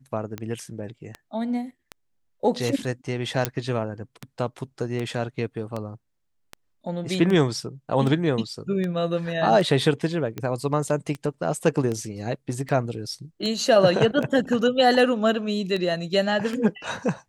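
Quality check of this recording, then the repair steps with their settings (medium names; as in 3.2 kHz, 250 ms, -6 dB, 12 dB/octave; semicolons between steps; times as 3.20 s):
tick 78 rpm -17 dBFS
3.45 s: pop -5 dBFS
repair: de-click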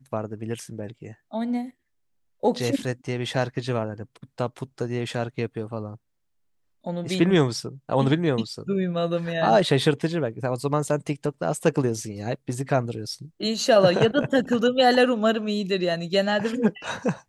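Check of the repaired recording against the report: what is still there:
nothing left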